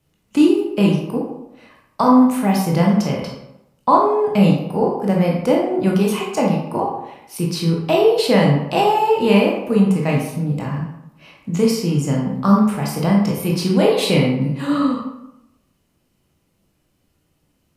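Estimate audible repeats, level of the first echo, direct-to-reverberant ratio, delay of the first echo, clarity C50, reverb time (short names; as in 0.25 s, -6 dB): none, none, -2.5 dB, none, 2.5 dB, 0.85 s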